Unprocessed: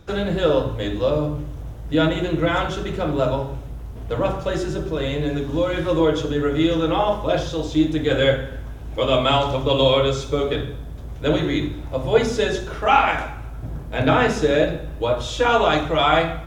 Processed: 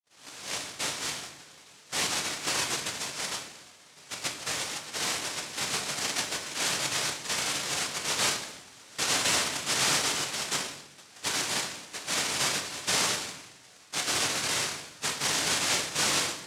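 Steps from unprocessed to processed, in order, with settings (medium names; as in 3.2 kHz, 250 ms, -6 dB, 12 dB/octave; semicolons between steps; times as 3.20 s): tape start-up on the opening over 0.76 s; elliptic band-pass 2.5–5.7 kHz, stop band 40 dB; in parallel at +3 dB: compression, threshold -39 dBFS, peak gain reduction 16.5 dB; on the sum: hard clipper -26.5 dBFS, distortion -9 dB; noise-vocoded speech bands 1; simulated room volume 120 m³, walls mixed, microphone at 0.44 m; trim +2 dB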